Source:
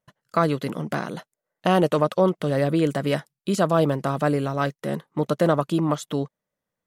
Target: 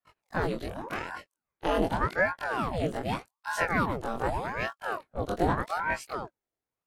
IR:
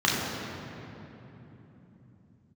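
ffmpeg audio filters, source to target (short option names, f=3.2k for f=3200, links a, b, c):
-af "afftfilt=real='re':imag='-im':win_size=2048:overlap=0.75,aeval=exprs='val(0)*sin(2*PI*680*n/s+680*0.85/0.84*sin(2*PI*0.84*n/s))':c=same"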